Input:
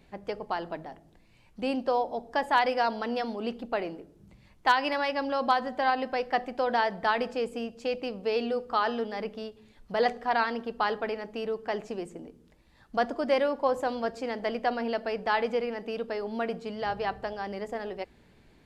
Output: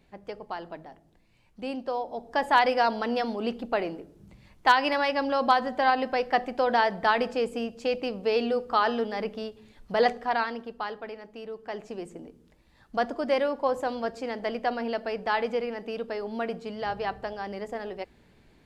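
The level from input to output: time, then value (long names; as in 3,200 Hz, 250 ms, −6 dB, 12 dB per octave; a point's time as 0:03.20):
0:02.01 −4 dB
0:02.47 +3 dB
0:10.04 +3 dB
0:10.94 −7 dB
0:11.48 −7 dB
0:12.12 0 dB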